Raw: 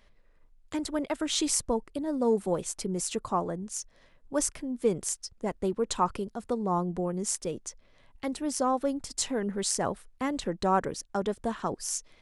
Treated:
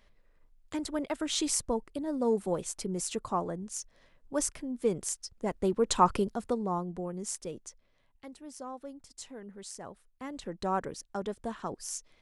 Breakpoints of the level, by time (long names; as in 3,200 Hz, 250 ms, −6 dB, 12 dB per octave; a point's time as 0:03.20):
0:05.24 −2.5 dB
0:06.22 +5 dB
0:06.84 −6 dB
0:07.60 −6 dB
0:08.34 −15 dB
0:09.91 −15 dB
0:10.65 −5.5 dB